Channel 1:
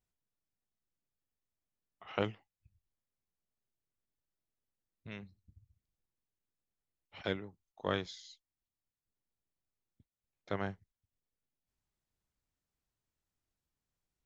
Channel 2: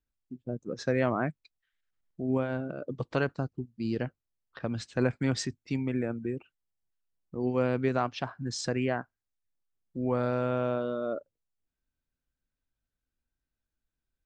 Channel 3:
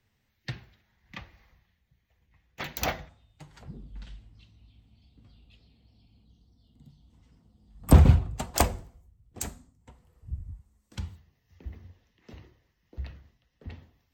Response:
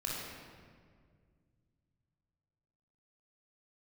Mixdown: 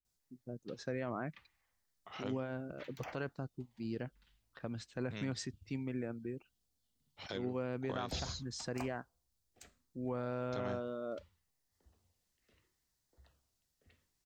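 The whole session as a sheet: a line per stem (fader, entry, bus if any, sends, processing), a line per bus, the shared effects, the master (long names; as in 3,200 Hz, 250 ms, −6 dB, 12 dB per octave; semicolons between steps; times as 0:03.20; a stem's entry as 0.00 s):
+1.5 dB, 0.05 s, no send, high shelf with overshoot 3,500 Hz +7.5 dB, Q 1.5; downward compressor 3 to 1, threshold −39 dBFS, peak gain reduction 10 dB
−12.5 dB, 0.00 s, no send, automatic gain control gain up to 3.5 dB
−16.0 dB, 0.20 s, no send, three-way crossover with the lows and the highs turned down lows −13 dB, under 480 Hz, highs −14 dB, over 5,800 Hz; auto-filter notch saw down 0.71 Hz 500–4,200 Hz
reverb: not used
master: brickwall limiter −27.5 dBFS, peak gain reduction 8.5 dB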